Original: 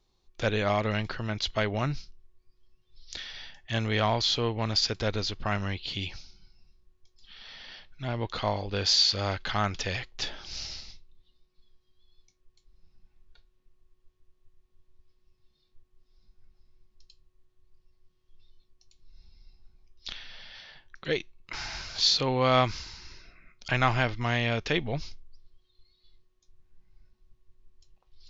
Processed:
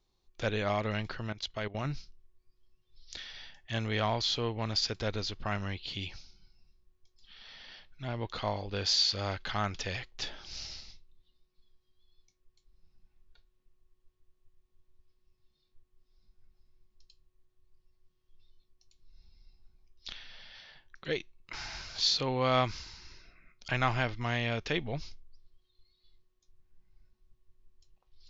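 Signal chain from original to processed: 1.29–1.85 level quantiser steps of 15 dB; gain -4.5 dB

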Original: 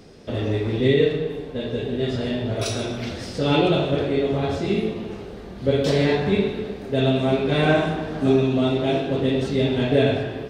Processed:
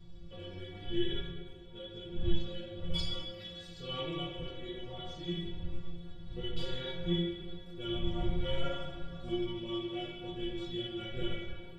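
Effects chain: wind noise 100 Hz -23 dBFS; resonant low shelf 150 Hz +6.5 dB, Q 1.5; varispeed -11%; bell 3400 Hz +15 dB 0.27 oct; metallic resonator 170 Hz, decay 0.38 s, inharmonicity 0.008; gain -5 dB

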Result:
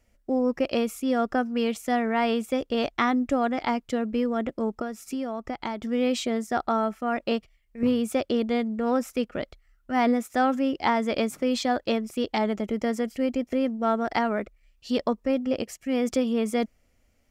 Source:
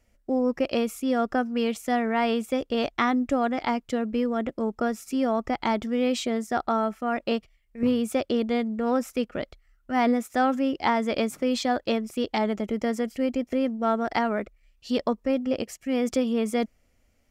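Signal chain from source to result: 4.81–5.84 compressor 5:1, threshold -28 dBFS, peak gain reduction 8 dB

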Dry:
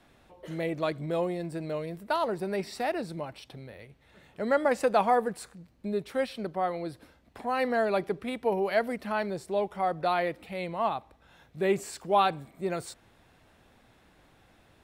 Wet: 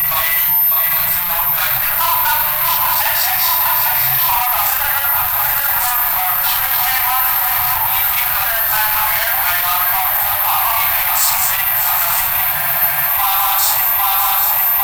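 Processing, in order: slices in reverse order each 0.143 s, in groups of 6; low shelf 370 Hz -9.5 dB; swung echo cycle 0.801 s, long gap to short 3:1, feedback 74%, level -13 dB; Schroeder reverb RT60 0.51 s, combs from 31 ms, DRR -6 dB; compressor, threshold -29 dBFS, peak gain reduction 15 dB; whine 13000 Hz -40 dBFS; sample leveller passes 5; elliptic band-stop 120–860 Hz, stop band 50 dB; high shelf 11000 Hz +8.5 dB; spectral freeze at 12.55, 0.54 s; gain +7.5 dB

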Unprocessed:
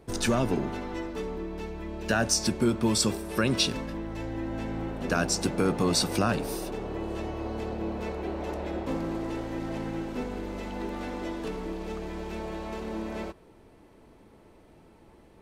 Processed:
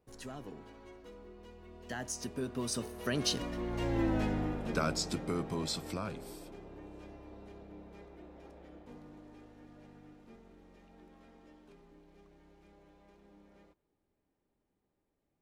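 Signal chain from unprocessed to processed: Doppler pass-by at 4.05, 32 m/s, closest 9.4 m; gain +3 dB

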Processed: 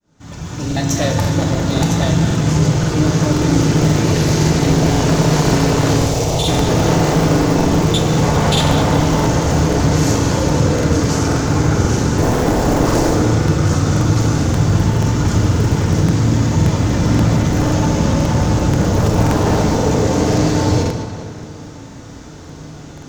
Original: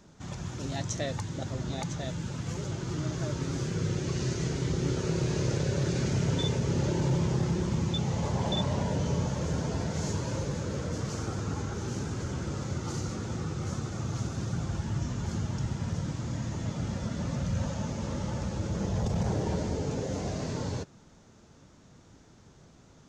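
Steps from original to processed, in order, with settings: opening faded in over 1.34 s; 12.18–13.14 low shelf 450 Hz +10.5 dB; short-mantissa float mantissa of 4-bit; sine folder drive 15 dB, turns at -13 dBFS; 5.96–6.48 fixed phaser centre 650 Hz, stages 4; tape echo 0.202 s, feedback 62%, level -8 dB, low-pass 5500 Hz; FDN reverb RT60 1.2 s, low-frequency decay 1.4×, high-frequency decay 0.75×, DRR 2 dB; crackling interface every 0.53 s, samples 2048, repeat, from 0.67; gain -1 dB

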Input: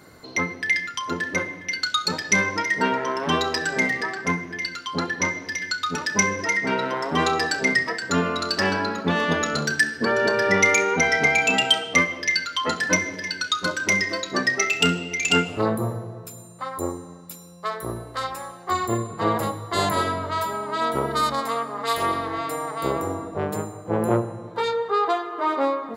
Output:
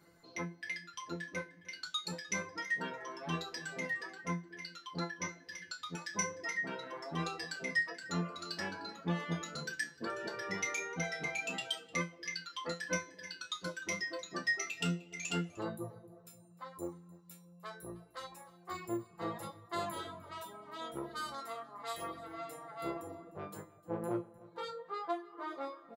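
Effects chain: reverb removal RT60 0.76 s; resonator 170 Hz, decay 0.24 s, harmonics all, mix 90%; echo 0.303 s -21.5 dB; gain -5 dB

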